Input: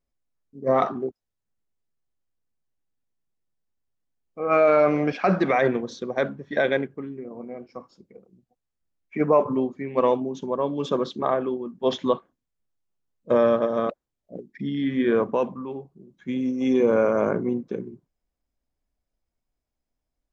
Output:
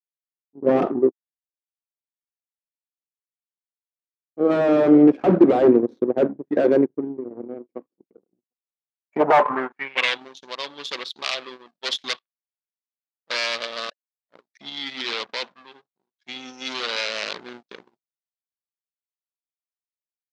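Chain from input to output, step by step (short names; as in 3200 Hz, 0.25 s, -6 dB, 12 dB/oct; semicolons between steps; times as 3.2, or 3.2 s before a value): sine folder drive 10 dB, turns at -7 dBFS; power-law curve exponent 2; band-pass sweep 330 Hz -> 4200 Hz, 8.83–10.24; gain +4.5 dB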